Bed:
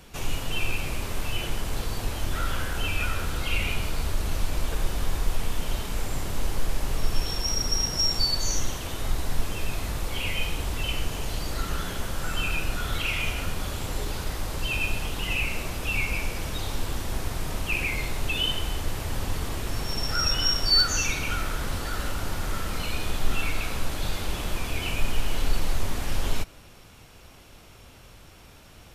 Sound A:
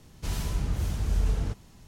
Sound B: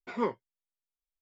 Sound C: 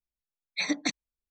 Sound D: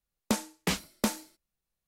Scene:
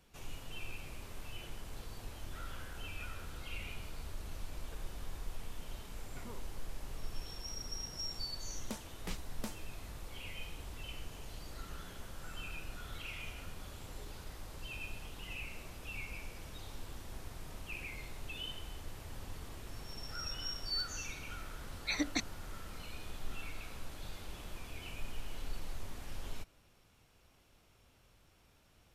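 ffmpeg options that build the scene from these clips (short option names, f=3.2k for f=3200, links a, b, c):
-filter_complex "[0:a]volume=-17dB[a];[2:a]acompressor=threshold=-35dB:ratio=6:attack=3.2:release=140:knee=1:detection=peak,atrim=end=1.21,asetpts=PTS-STARTPTS,volume=-12.5dB,afade=t=in:d=0.004:c=hsin,afade=t=out:st=1.206:d=0.004:c=hsin,adelay=6080[b];[4:a]atrim=end=1.87,asetpts=PTS-STARTPTS,volume=-15.5dB,afade=t=in:d=0.004:c=hsin,afade=t=out:st=1.866:d=0.004:c=hsin,adelay=8400[c];[3:a]atrim=end=1.3,asetpts=PTS-STARTPTS,volume=-6dB,afade=t=in:d=0.004:c=hsin,afade=t=out:st=1.296:d=0.004:c=hsin,adelay=21300[d];[a][b][c][d]amix=inputs=4:normalize=0"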